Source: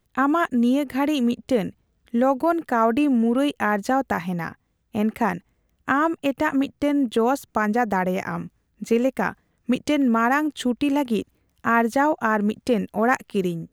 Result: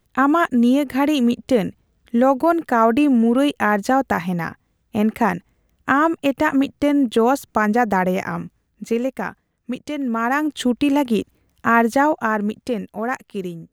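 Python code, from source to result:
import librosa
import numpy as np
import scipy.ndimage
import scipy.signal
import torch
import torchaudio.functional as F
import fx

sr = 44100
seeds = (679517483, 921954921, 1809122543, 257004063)

y = fx.gain(x, sr, db=fx.line((8.09, 4.0), (9.9, -6.0), (10.55, 4.0), (11.94, 4.0), (12.93, -4.0)))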